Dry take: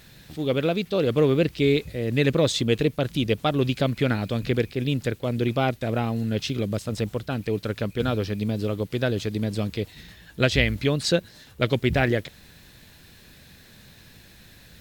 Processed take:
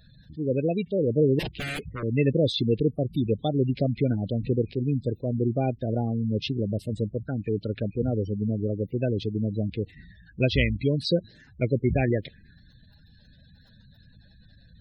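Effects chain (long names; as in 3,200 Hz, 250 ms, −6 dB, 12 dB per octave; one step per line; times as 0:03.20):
0:01.39–0:02.03: wrap-around overflow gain 21.5 dB
gate on every frequency bin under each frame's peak −15 dB strong
phaser swept by the level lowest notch 360 Hz, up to 1,300 Hz, full sweep at −23.5 dBFS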